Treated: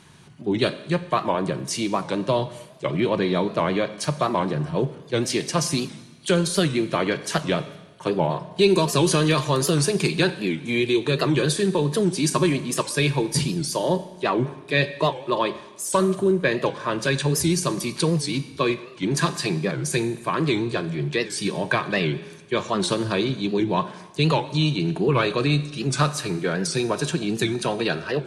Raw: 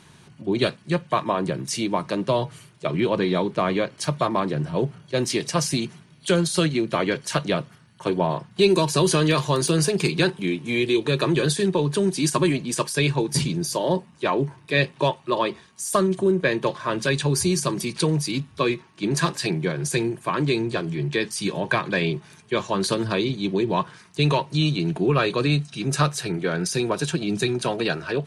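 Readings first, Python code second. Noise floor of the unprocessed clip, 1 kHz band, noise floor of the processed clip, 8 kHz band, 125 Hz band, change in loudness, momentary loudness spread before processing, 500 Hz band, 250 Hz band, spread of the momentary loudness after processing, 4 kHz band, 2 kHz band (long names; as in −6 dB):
−52 dBFS, 0.0 dB, −45 dBFS, 0.0 dB, 0.0 dB, 0.0 dB, 6 LU, 0.0 dB, +0.5 dB, 6 LU, +0.5 dB, 0.0 dB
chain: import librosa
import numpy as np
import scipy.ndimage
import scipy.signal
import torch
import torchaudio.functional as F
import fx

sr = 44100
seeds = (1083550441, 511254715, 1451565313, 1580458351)

y = fx.rev_schroeder(x, sr, rt60_s=1.1, comb_ms=30, drr_db=13.0)
y = fx.record_warp(y, sr, rpm=78.0, depth_cents=160.0)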